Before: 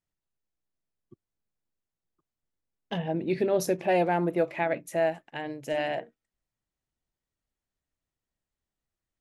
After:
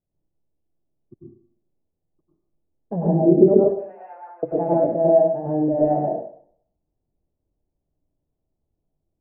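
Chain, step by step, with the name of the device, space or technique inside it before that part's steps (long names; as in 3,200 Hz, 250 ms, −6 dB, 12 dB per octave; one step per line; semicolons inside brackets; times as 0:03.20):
0:03.54–0:04.43: high-pass filter 1,400 Hz 24 dB per octave
next room (low-pass filter 690 Hz 24 dB per octave; convolution reverb RT60 0.60 s, pre-delay 91 ms, DRR −6 dB)
level +6.5 dB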